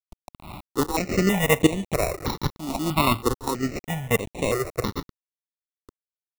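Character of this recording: aliases and images of a low sample rate 1.6 kHz, jitter 0%; tremolo saw up 1.2 Hz, depth 85%; a quantiser's noise floor 8-bit, dither none; notches that jump at a steady rate 3.1 Hz 450–4900 Hz

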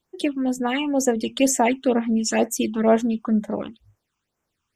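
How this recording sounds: phasing stages 8, 2.1 Hz, lowest notch 530–4200 Hz

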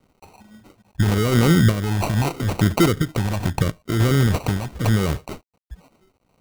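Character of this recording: a quantiser's noise floor 10-bit, dither none; random-step tremolo; phasing stages 6, 0.83 Hz, lowest notch 410–1200 Hz; aliases and images of a low sample rate 1.7 kHz, jitter 0%

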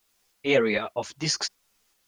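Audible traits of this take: tremolo saw up 2.6 Hz, depth 60%; a quantiser's noise floor 12-bit, dither triangular; a shimmering, thickened sound

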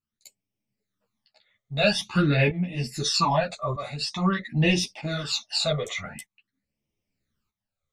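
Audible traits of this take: phasing stages 12, 0.47 Hz, lowest notch 270–1400 Hz; tremolo saw up 0.8 Hz, depth 75%; a shimmering, thickened sound

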